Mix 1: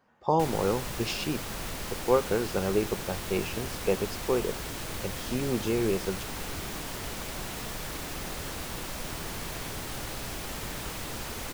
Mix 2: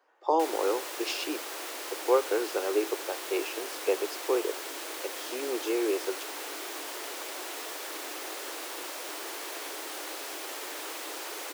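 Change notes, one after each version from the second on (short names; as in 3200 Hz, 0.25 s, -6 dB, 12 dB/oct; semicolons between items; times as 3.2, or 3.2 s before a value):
master: add steep high-pass 300 Hz 72 dB/oct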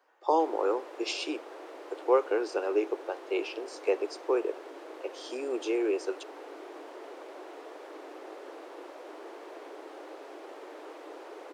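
background: add band-pass 430 Hz, Q 0.93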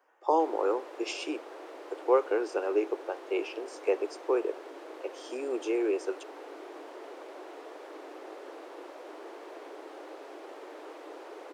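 speech: add bell 4100 Hz -9.5 dB 0.56 oct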